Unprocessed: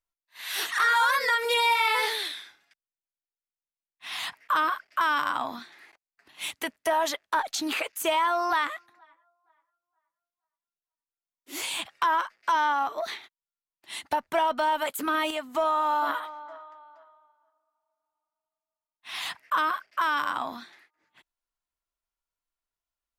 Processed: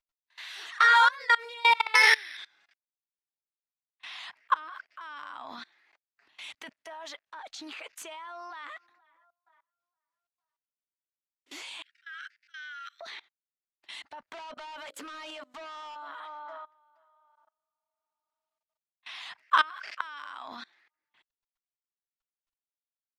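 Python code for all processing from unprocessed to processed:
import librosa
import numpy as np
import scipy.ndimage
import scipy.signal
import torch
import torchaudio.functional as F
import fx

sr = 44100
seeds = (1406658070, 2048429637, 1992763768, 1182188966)

y = fx.chain(x, sr, fx.peak_eq(hz=2000.0, db=13.0, octaves=1.2),
    fx.resample_bad(factor=6, down='filtered', up='hold'),
    fx.band_squash(depth_pct=40), at=(1.95, 2.37))
y = fx.chain(y, sr, fx.highpass(hz=110.0, slope=12),
    fx.high_shelf(hz=9700.0, db=-2.0), at=(4.12, 4.73))
y = fx.chain(y, sr, fx.steep_highpass(hz=1400.0, slope=96),
    fx.auto_swell(attack_ms=243.0), at=(11.82, 13.01))
y = fx.chain(y, sr, fx.highpass(hz=210.0, slope=6),
    fx.hum_notches(base_hz=60, count=10),
    fx.overload_stage(gain_db=30.5), at=(14.26, 15.96))
y = fx.chain(y, sr, fx.tilt_shelf(db=-5.0, hz=910.0),
    fx.sustainer(db_per_s=93.0), at=(19.42, 20.48))
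y = scipy.signal.sosfilt(scipy.signal.butter(2, 5300.0, 'lowpass', fs=sr, output='sos'), y)
y = fx.low_shelf(y, sr, hz=490.0, db=-10.0)
y = fx.level_steps(y, sr, step_db=24)
y = F.gain(torch.from_numpy(y), 5.5).numpy()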